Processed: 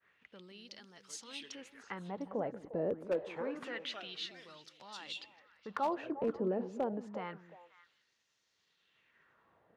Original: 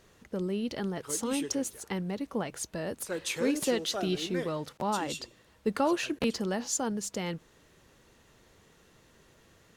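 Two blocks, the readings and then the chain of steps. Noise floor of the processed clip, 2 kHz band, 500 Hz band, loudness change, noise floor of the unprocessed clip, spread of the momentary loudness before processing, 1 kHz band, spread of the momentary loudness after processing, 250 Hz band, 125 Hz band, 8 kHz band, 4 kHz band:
−78 dBFS, −8.5 dB, −5.5 dB, −7.5 dB, −62 dBFS, 7 LU, −6.0 dB, 18 LU, −10.5 dB, −11.5 dB, −19.5 dB, −8.0 dB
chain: downward expander −56 dBFS
bass and treble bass +9 dB, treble −13 dB
brickwall limiter −22 dBFS, peak gain reduction 8.5 dB
auto-filter band-pass sine 0.27 Hz 460–5,600 Hz
echo through a band-pass that steps 176 ms, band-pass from 240 Hz, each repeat 1.4 octaves, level −8 dB
wave folding −29.5 dBFS
level +4.5 dB

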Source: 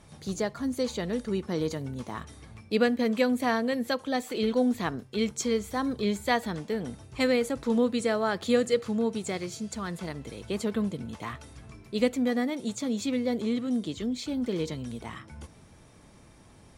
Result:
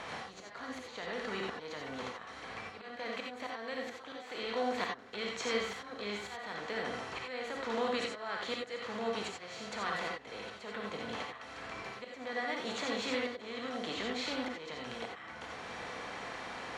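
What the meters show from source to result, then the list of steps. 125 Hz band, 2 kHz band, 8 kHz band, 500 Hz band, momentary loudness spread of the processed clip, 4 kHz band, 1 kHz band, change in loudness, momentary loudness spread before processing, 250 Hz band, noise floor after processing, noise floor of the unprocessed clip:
−15.5 dB, −2.5 dB, −9.5 dB, −10.0 dB, 10 LU, −2.5 dB, −4.0 dB, −9.5 dB, 13 LU, −15.5 dB, −50 dBFS, −54 dBFS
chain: compressor on every frequency bin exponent 0.6
three-way crossover with the lows and the highs turned down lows −14 dB, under 590 Hz, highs −21 dB, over 4,800 Hz
volume swells 673 ms
in parallel at +1.5 dB: downward compressor, threshold −44 dBFS, peak gain reduction 17.5 dB
on the sum: reverb whose tail is shaped and stops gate 110 ms rising, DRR 0 dB
level −6 dB

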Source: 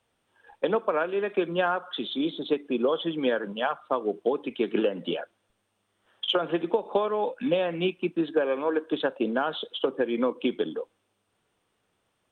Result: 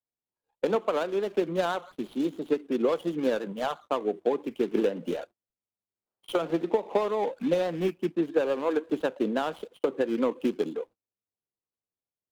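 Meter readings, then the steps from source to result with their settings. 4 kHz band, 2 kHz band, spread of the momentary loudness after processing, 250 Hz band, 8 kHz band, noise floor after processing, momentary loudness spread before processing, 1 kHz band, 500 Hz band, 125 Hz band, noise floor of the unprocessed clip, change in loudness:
−9.5 dB, −5.0 dB, 6 LU, −0.5 dB, can't be measured, below −85 dBFS, 6 LU, −2.5 dB, −0.5 dB, 0.0 dB, −75 dBFS, −1.0 dB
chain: running median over 25 samples
noise gate −45 dBFS, range −25 dB
pitch vibrato 5.9 Hz 53 cents

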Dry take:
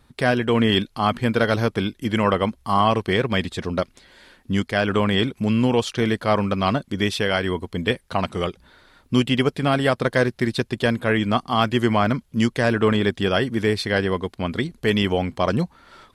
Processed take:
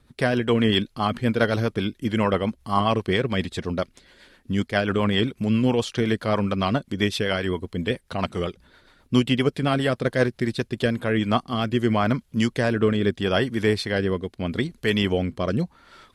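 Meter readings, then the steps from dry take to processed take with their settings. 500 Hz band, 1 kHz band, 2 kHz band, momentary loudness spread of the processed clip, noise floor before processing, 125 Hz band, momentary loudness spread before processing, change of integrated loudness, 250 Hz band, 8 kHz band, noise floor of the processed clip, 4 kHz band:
−2.0 dB, −4.5 dB, −3.0 dB, 7 LU, −59 dBFS, −1.5 dB, 7 LU, −2.0 dB, −1.5 dB, −2.5 dB, −61 dBFS, −2.5 dB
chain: rotating-speaker cabinet horn 7.5 Hz, later 0.8 Hz, at 0:10.53

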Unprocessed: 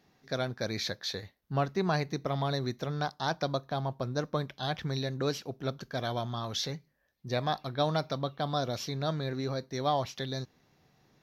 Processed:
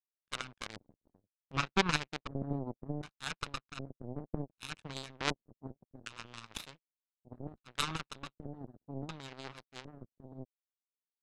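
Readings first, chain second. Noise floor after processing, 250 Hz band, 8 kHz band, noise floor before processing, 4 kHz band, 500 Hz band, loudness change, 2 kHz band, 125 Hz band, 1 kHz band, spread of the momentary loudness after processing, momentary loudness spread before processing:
below −85 dBFS, −7.0 dB, −2.5 dB, −70 dBFS, −5.0 dB, −12.5 dB, −6.5 dB, −1.0 dB, −10.0 dB, −8.5 dB, 16 LU, 7 LU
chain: lower of the sound and its delayed copy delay 0.78 ms
auto-filter low-pass square 0.66 Hz 280–2,900 Hz
power curve on the samples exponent 3
level +11 dB

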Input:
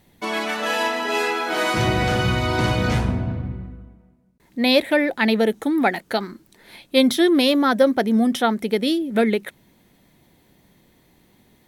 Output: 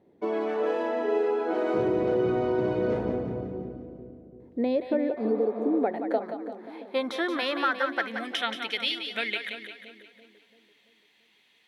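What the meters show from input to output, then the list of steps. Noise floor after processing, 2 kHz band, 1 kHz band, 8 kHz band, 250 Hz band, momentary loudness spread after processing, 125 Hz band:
−64 dBFS, −8.5 dB, −8.0 dB, below −15 dB, −9.5 dB, 13 LU, −14.5 dB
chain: band-pass filter sweep 410 Hz → 2,800 Hz, 0:05.56–0:08.58
downward compressor, threshold −28 dBFS, peak gain reduction 10.5 dB
healed spectral selection 0:05.19–0:05.77, 530–4,300 Hz after
echo with a time of its own for lows and highs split 530 Hz, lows 338 ms, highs 177 ms, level −7.5 dB
level +5 dB

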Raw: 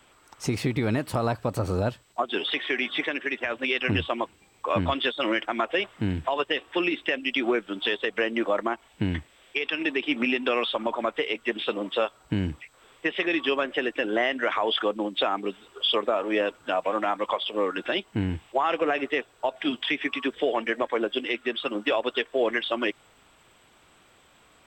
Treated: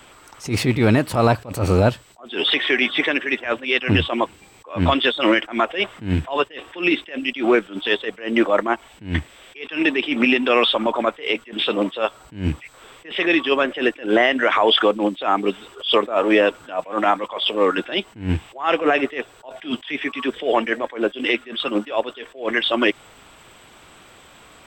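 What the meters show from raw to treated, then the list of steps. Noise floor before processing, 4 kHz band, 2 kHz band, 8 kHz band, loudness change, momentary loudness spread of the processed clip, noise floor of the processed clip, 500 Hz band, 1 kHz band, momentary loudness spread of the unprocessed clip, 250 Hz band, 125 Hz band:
−59 dBFS, +6.5 dB, +6.0 dB, can't be measured, +6.5 dB, 10 LU, −48 dBFS, +6.0 dB, +6.5 dB, 5 LU, +7.5 dB, +7.5 dB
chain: loose part that buzzes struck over −32 dBFS, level −36 dBFS
boost into a limiter +16 dB
level that may rise only so fast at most 170 dB per second
level −5 dB

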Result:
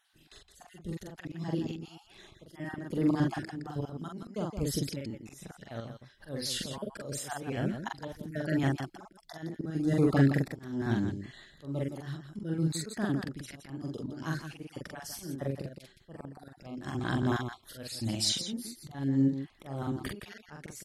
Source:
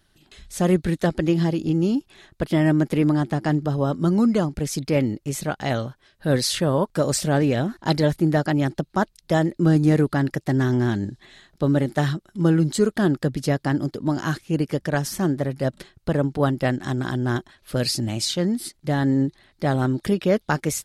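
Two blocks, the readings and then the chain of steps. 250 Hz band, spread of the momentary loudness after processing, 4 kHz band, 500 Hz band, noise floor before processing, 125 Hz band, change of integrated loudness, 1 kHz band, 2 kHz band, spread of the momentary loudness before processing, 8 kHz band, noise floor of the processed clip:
−11.5 dB, 19 LU, −7.5 dB, −14.5 dB, −64 dBFS, −11.5 dB, −11.0 dB, −13.0 dB, −11.0 dB, 7 LU, −9.5 dB, −62 dBFS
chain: time-frequency cells dropped at random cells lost 29%
volume swells 473 ms
on a send: loudspeakers that aren't time-aligned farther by 15 metres −2 dB, 57 metres −8 dB
on the sum: level −5 dB

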